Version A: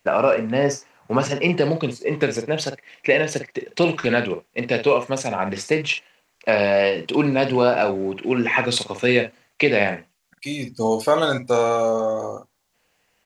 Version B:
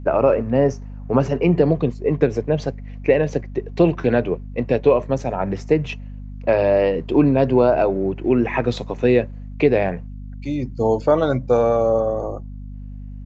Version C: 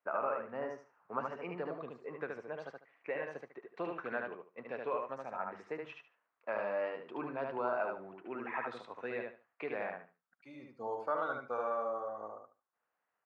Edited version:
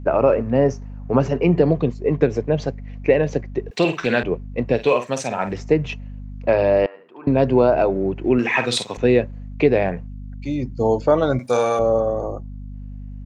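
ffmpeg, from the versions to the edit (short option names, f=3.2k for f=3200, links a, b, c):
-filter_complex "[0:a]asplit=4[a][b][c][d];[1:a]asplit=6[e][f][g][h][i][j];[e]atrim=end=3.712[k];[a]atrim=start=3.708:end=4.232[l];[f]atrim=start=4.228:end=4.89[m];[b]atrim=start=4.73:end=5.6[n];[g]atrim=start=5.44:end=6.862[o];[2:a]atrim=start=6.858:end=7.272[p];[h]atrim=start=7.268:end=8.392[q];[c]atrim=start=8.388:end=8.972[r];[i]atrim=start=8.968:end=11.392[s];[d]atrim=start=11.388:end=11.792[t];[j]atrim=start=11.788[u];[k][l]acrossfade=d=0.004:c1=hsin:c2=hsin[v];[v][m]acrossfade=d=0.004:c1=hsin:c2=hsin[w];[w][n]acrossfade=d=0.16:c1=tri:c2=tri[x];[x][o]acrossfade=d=0.16:c1=tri:c2=tri[y];[y][p]acrossfade=d=0.004:c1=hsin:c2=hsin[z];[z][q]acrossfade=d=0.004:c1=hsin:c2=hsin[aa];[aa][r]acrossfade=d=0.004:c1=hsin:c2=hsin[ab];[ab][s]acrossfade=d=0.004:c1=hsin:c2=hsin[ac];[ac][t]acrossfade=d=0.004:c1=hsin:c2=hsin[ad];[ad][u]acrossfade=d=0.004:c1=hsin:c2=hsin"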